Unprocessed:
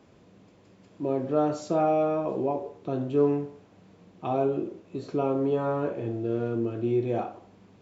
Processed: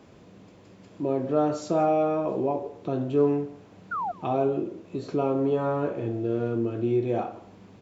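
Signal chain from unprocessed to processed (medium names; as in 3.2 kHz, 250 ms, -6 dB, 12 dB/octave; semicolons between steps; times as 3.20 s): in parallel at -2.5 dB: compression, threshold -39 dBFS, peak gain reduction 20 dB; on the sum: painted sound fall, 3.91–4.12 s, 660–1500 Hz -29 dBFS; delay 170 ms -21 dB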